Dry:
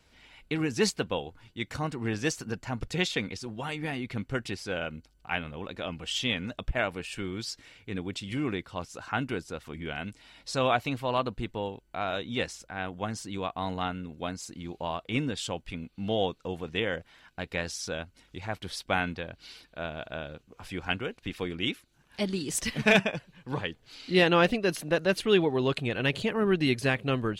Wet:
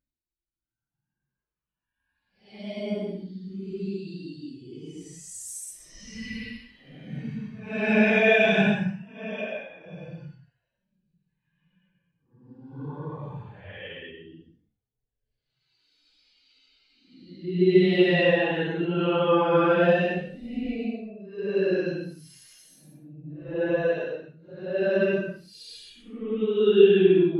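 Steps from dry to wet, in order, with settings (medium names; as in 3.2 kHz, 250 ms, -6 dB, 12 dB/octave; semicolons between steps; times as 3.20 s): Paulstretch 7.7×, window 0.10 s, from 21.85 s; spectral contrast expander 1.5:1; trim +2 dB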